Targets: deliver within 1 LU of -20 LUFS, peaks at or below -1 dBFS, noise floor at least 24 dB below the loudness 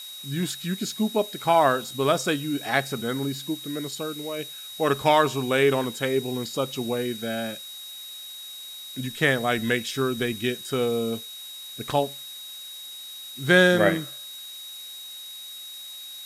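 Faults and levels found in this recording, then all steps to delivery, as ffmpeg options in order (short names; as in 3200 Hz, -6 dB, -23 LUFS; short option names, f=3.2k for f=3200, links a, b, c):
steady tone 3800 Hz; tone level -38 dBFS; noise floor -40 dBFS; noise floor target -49 dBFS; loudness -25.0 LUFS; peak -5.0 dBFS; loudness target -20.0 LUFS
-> -af "bandreject=f=3.8k:w=30"
-af "afftdn=nr=9:nf=-40"
-af "volume=5dB,alimiter=limit=-1dB:level=0:latency=1"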